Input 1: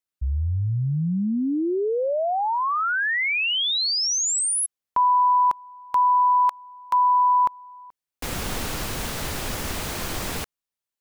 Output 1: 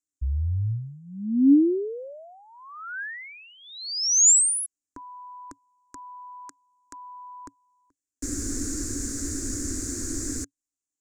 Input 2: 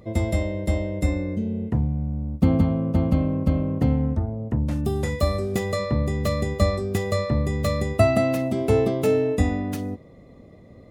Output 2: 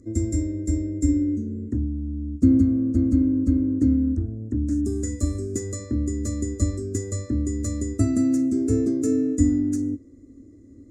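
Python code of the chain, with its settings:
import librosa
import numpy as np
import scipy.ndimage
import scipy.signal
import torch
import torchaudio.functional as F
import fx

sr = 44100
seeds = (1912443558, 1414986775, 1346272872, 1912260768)

y = fx.curve_eq(x, sr, hz=(110.0, 160.0, 280.0, 440.0, 850.0, 1600.0, 3100.0, 4500.0, 7100.0, 15000.0), db=(0, -22, 12, -7, -28, -7, -28, -8, 11, -19))
y = y * 10.0 ** (-1.5 / 20.0)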